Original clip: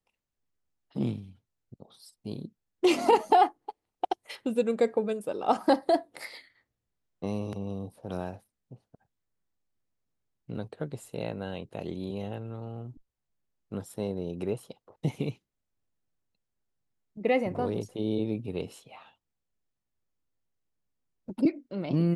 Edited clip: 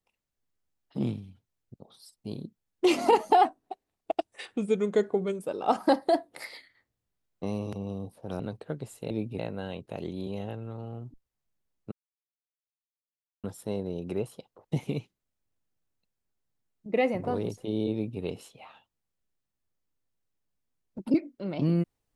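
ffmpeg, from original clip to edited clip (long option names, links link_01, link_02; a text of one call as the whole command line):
ffmpeg -i in.wav -filter_complex "[0:a]asplit=7[link_01][link_02][link_03][link_04][link_05][link_06][link_07];[link_01]atrim=end=3.454[link_08];[link_02]atrim=start=3.45:end=5.22,asetpts=PTS-STARTPTS,asetrate=39690,aresample=44100[link_09];[link_03]atrim=start=5.216:end=8.202[link_10];[link_04]atrim=start=10.508:end=11.222[link_11];[link_05]atrim=start=18.238:end=18.522[link_12];[link_06]atrim=start=11.218:end=13.75,asetpts=PTS-STARTPTS,afade=type=out:start_time=2.528:duration=0.004:curve=hsin,apad=pad_dur=1.52[link_13];[link_07]atrim=start=13.75,asetpts=PTS-STARTPTS,afade=type=in:duration=0.004:curve=hsin[link_14];[link_08][link_09]acrossfade=duration=0.004:curve1=hsin:curve2=hsin[link_15];[link_15][link_10]acrossfade=duration=0.004:curve1=hsin:curve2=hsin[link_16];[link_16][link_11]acrossfade=duration=0.004:curve1=hsin:curve2=hsin[link_17];[link_17][link_12]acrossfade=duration=0.004:curve1=hsin:curve2=hsin[link_18];[link_13][link_14]concat=n=2:v=0:a=1[link_19];[link_18][link_19]acrossfade=duration=0.004:curve1=hsin:curve2=hsin" out.wav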